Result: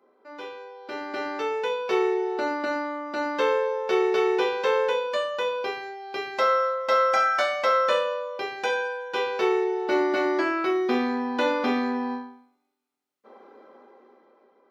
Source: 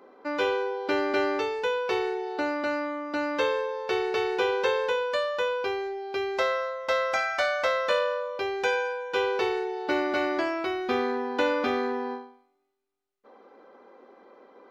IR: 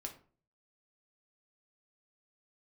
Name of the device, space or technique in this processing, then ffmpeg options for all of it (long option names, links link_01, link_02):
far laptop microphone: -filter_complex "[1:a]atrim=start_sample=2205[link_01];[0:a][link_01]afir=irnorm=-1:irlink=0,highpass=frequency=140:width=0.5412,highpass=frequency=140:width=1.3066,dynaudnorm=framelen=280:gausssize=9:maxgain=15dB,volume=-8dB"